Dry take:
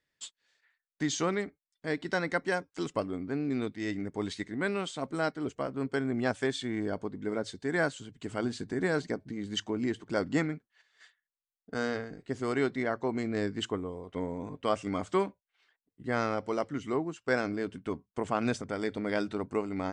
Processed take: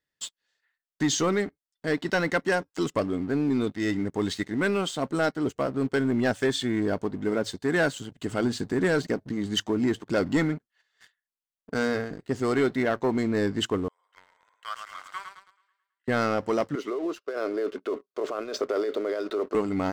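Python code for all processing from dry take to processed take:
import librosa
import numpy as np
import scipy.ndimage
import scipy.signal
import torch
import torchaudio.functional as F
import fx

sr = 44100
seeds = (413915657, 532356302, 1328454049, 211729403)

y = fx.chain(x, sr, fx.ladder_highpass(hz=1300.0, resonance_pct=55),
    fx.echo_feedback(ms=108, feedback_pct=53, wet_db=-6.0), at=(13.88, 16.08))
y = fx.chain(y, sr, fx.over_compress(threshold_db=-37.0, ratio=-1.0),
    fx.cabinet(low_hz=340.0, low_slope=24, high_hz=5100.0, hz=(400.0, 590.0, 850.0, 1200.0, 1800.0, 3000.0), db=(8, 7, -10, 5, -6, -7)), at=(16.75, 19.55))
y = fx.notch(y, sr, hz=2300.0, q=11.0)
y = fx.leveller(y, sr, passes=2)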